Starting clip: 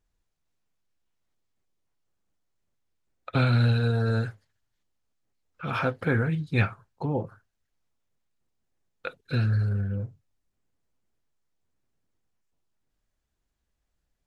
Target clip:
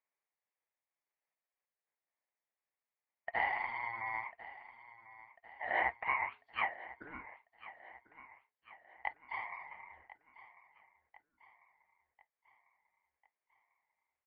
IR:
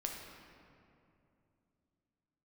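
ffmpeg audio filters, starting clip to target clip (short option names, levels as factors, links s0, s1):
-af "asuperpass=centerf=1400:order=4:qfactor=2,aeval=exprs='val(0)*sin(2*PI*580*n/s)':c=same,aecho=1:1:1046|2092|3138|4184:0.141|0.072|0.0367|0.0187,volume=1.33"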